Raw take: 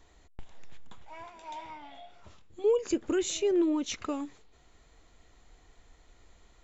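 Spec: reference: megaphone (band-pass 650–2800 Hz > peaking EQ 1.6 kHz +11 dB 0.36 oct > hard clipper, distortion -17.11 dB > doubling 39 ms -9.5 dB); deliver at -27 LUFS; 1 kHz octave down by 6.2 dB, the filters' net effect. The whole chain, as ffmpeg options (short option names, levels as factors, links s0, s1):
-filter_complex "[0:a]highpass=650,lowpass=2800,equalizer=f=1000:t=o:g=-8,equalizer=f=1600:t=o:w=0.36:g=11,asoftclip=type=hard:threshold=0.0282,asplit=2[s0][s1];[s1]adelay=39,volume=0.335[s2];[s0][s2]amix=inputs=2:normalize=0,volume=5.01"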